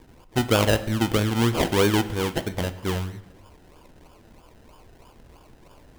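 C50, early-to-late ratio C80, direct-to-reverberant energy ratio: 14.5 dB, 16.0 dB, 11.0 dB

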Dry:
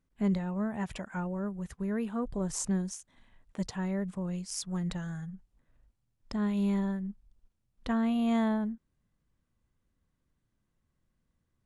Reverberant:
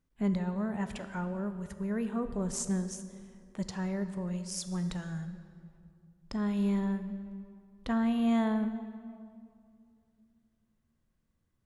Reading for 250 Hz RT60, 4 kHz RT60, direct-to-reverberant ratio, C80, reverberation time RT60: 2.9 s, 1.5 s, 9.0 dB, 11.5 dB, 2.4 s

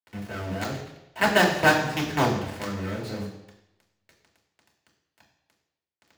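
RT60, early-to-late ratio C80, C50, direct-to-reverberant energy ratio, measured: 0.90 s, 8.5 dB, 6.0 dB, -3.0 dB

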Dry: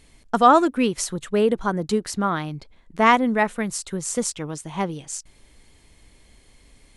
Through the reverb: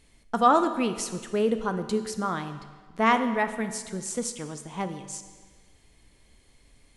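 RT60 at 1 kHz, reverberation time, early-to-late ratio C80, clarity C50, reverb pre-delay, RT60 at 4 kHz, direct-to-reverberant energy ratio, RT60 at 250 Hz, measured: 1.5 s, 1.5 s, 11.5 dB, 10.5 dB, 9 ms, 1.3 s, 8.5 dB, 1.5 s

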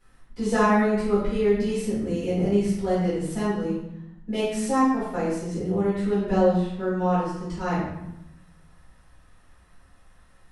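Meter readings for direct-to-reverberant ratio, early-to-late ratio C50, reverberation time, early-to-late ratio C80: -12.0 dB, 0.5 dB, 0.85 s, 4.0 dB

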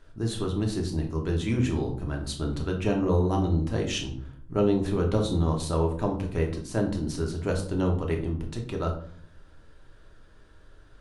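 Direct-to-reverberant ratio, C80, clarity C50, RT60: 1.0 dB, 12.5 dB, 8.5 dB, 0.55 s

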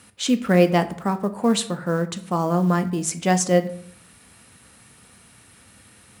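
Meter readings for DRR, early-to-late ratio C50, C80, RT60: 8.5 dB, 15.0 dB, 18.0 dB, 0.65 s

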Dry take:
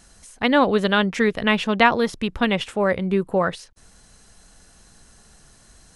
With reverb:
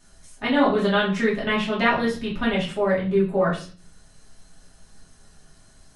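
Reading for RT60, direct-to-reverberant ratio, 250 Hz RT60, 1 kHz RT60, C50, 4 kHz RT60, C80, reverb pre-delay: 0.40 s, -7.5 dB, 0.60 s, 0.35 s, 7.5 dB, 0.35 s, 12.0 dB, 3 ms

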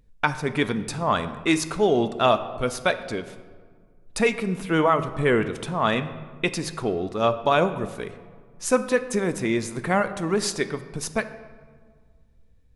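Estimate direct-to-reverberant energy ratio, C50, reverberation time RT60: 10.5 dB, 12.5 dB, 1.8 s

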